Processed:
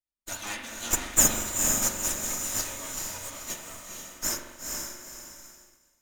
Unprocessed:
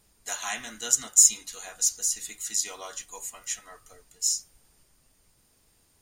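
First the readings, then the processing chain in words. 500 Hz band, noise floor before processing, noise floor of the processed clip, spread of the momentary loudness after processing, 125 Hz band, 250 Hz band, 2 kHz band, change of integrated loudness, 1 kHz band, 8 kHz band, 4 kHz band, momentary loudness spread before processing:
+6.5 dB, -66 dBFS, -71 dBFS, 19 LU, n/a, +13.0 dB, +3.5 dB, -2.5 dB, +4.0 dB, -2.5 dB, -1.5 dB, 20 LU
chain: minimum comb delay 3.3 ms; vibrato 8.7 Hz 50 cents; on a send: diffused feedback echo 0.47 s, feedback 40%, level -3 dB; on the sum: spring tank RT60 1.2 s, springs 42 ms, chirp 35 ms, DRR 4.5 dB; expander -43 dBFS; gain -2 dB

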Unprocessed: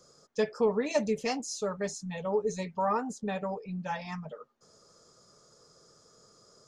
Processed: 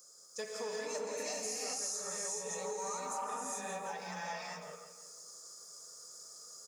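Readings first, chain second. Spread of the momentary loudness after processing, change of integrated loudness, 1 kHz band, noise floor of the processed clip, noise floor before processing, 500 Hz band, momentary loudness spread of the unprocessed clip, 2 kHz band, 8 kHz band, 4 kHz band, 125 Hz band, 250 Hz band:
13 LU, -7.5 dB, -6.0 dB, -58 dBFS, -62 dBFS, -10.5 dB, 10 LU, -4.5 dB, +6.0 dB, 0.0 dB, -16.0 dB, -16.5 dB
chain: bell 3200 Hz -13.5 dB 1.7 oct; non-linear reverb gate 0.45 s rising, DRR -6 dB; in parallel at -5 dB: soft clip -17.5 dBFS, distortion -16 dB; on the sum: differentiator; on a send: feedback echo 0.167 s, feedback 40%, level -10.5 dB; on the sum: compressor 6:1, threshold -44 dBFS, peak gain reduction 10.5 dB; gain +8 dB

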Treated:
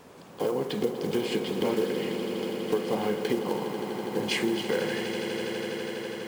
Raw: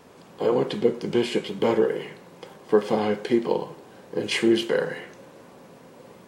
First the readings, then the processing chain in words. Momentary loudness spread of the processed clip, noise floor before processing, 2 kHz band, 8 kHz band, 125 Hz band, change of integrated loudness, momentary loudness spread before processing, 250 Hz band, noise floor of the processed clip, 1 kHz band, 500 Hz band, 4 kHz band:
5 LU, -49 dBFS, -1.5 dB, +0.5 dB, -1.5 dB, -5.0 dB, 14 LU, -4.0 dB, -48 dBFS, -3.0 dB, -4.5 dB, -1.5 dB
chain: block floating point 5-bit; compressor, threshold -25 dBFS, peak gain reduction 11.5 dB; on a send: swelling echo 82 ms, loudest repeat 8, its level -13 dB

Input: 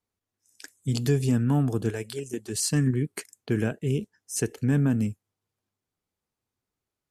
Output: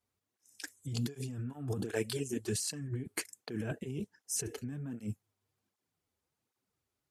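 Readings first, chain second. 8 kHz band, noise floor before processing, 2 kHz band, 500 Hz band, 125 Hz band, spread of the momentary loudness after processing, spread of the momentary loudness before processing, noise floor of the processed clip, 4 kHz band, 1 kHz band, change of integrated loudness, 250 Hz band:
-5.5 dB, under -85 dBFS, -7.5 dB, -9.0 dB, -13.5 dB, 7 LU, 10 LU, under -85 dBFS, -5.5 dB, -12.0 dB, -11.5 dB, -13.0 dB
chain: low shelf 63 Hz -3.5 dB; negative-ratio compressor -32 dBFS, ratio -1; tape flanging out of phase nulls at 1.3 Hz, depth 6.9 ms; gain -2.5 dB

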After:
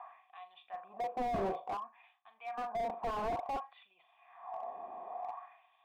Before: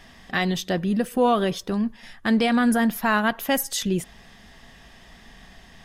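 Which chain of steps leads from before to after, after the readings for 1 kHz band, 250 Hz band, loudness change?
-9.5 dB, -26.5 dB, -16.5 dB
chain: low shelf 210 Hz +8 dB; reverse; compressor 10:1, threshold -27 dBFS, peak gain reduction 14.5 dB; reverse; vocal tract filter a; flutter echo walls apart 6.9 m, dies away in 0.23 s; LFO high-pass sine 0.56 Hz 330–3400 Hz; slew limiter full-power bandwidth 2.4 Hz; gain +16 dB

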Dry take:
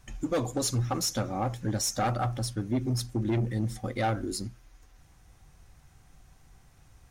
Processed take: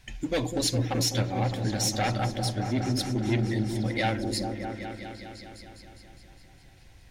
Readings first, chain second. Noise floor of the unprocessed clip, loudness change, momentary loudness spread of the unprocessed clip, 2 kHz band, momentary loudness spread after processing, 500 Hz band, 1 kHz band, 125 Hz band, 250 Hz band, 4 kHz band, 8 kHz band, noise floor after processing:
-59 dBFS, +2.0 dB, 5 LU, +6.5 dB, 15 LU, +2.0 dB, +0.5 dB, +2.0 dB, +2.5 dB, +5.5 dB, +0.5 dB, -53 dBFS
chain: band shelf 2900 Hz +8 dB; notch 1200 Hz, Q 5.2; on a send: repeats that get brighter 0.204 s, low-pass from 400 Hz, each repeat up 1 oct, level -3 dB

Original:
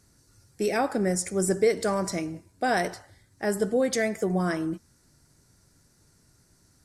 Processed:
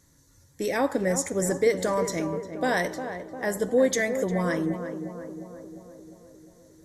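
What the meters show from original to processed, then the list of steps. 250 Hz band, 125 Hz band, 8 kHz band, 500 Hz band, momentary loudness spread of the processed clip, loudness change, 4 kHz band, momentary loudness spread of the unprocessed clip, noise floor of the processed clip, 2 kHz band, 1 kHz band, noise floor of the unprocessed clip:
+0.5 dB, 0.0 dB, +1.0 dB, +1.5 dB, 16 LU, +0.5 dB, -0.5 dB, 10 LU, -60 dBFS, +2.0 dB, -1.0 dB, -63 dBFS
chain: ripple EQ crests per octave 1.1, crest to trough 8 dB; on a send: tape echo 0.353 s, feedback 70%, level -7 dB, low-pass 1200 Hz

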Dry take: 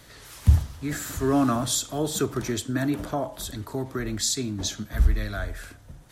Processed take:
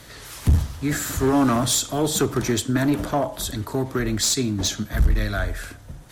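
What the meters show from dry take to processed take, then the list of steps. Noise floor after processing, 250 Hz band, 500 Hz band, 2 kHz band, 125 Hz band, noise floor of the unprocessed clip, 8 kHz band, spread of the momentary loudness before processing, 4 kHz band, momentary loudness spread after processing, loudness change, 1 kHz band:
-44 dBFS, +4.5 dB, +4.5 dB, +6.0 dB, +2.5 dB, -49 dBFS, +5.0 dB, 11 LU, +5.0 dB, 9 LU, +4.0 dB, +5.0 dB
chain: in parallel at +0.5 dB: limiter -17 dBFS, peak gain reduction 11 dB; on the sum: one-sided clip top -17.5 dBFS

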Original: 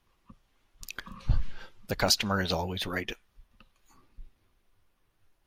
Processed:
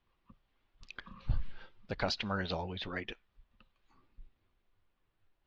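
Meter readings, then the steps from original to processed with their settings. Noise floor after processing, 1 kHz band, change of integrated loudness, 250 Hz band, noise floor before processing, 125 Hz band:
-80 dBFS, -6.5 dB, -8.0 dB, -6.5 dB, -73 dBFS, -6.5 dB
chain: LPF 4300 Hz 24 dB/oct; gain -6.5 dB

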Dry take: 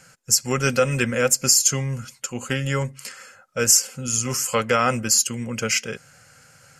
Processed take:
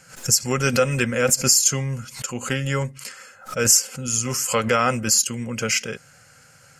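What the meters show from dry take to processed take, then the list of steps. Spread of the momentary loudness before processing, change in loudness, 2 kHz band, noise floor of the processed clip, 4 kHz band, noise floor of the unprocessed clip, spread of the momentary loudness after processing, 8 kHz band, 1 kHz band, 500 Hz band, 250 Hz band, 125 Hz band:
15 LU, 0.0 dB, +0.5 dB, -52 dBFS, +0.5 dB, -53 dBFS, 15 LU, +0.5 dB, +0.5 dB, 0.0 dB, +1.0 dB, +0.5 dB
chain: backwards sustainer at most 140 dB/s

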